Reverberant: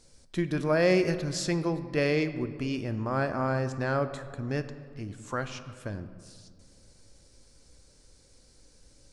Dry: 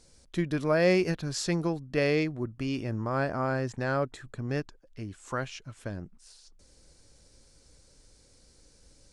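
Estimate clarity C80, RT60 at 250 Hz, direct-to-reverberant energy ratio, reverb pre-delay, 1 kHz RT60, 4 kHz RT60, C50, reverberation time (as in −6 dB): 13.0 dB, 2.5 s, 10.0 dB, 4 ms, 1.9 s, 1.0 s, 11.5 dB, 2.0 s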